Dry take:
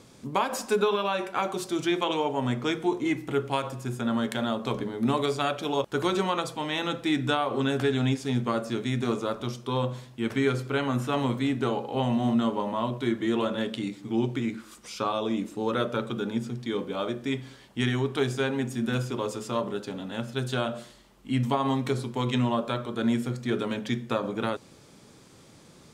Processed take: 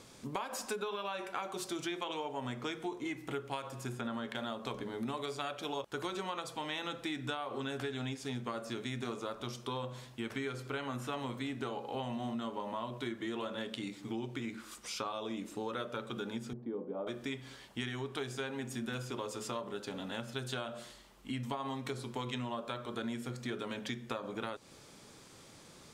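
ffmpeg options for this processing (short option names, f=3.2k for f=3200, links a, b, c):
-filter_complex "[0:a]asettb=1/sr,asplit=3[a][b][c];[a]atrim=end=3.924[d];[b]atrim=start=3.92:end=4.35,asetpts=PTS-STARTPTS,afade=t=in:d=0.004:c=qsin,afade=t=out:st=0.426:d=0.004:c=qsin,acrossover=split=3900[e][f];[f]acompressor=threshold=-54dB:ratio=4:attack=1:release=60[g];[e][g]amix=inputs=2:normalize=0[h];[c]atrim=start=4.346[i];[d][h]acrossfade=d=0.004:c1=hsin:c2=qsin[j];[j][i]acrossfade=d=0.004:c1=qsin:c2=hsin,asettb=1/sr,asplit=3[k][l][m];[k]atrim=end=16.534[n];[l]atrim=start=16.53:end=17.07,asetpts=PTS-STARTPTS,afade=t=in:d=0.004:c=qsin,afade=t=out:st=0.536:d=0.004:c=qsin,asuperpass=centerf=330:order=4:qfactor=0.59[o];[m]atrim=start=17.066[p];[n][o]acrossfade=d=0.004:c1=hsin:c2=qsin[q];[q][p]acrossfade=d=0.004:c1=qsin:c2=hsin,equalizer=f=160:w=0.37:g=-6,acompressor=threshold=-36dB:ratio=5"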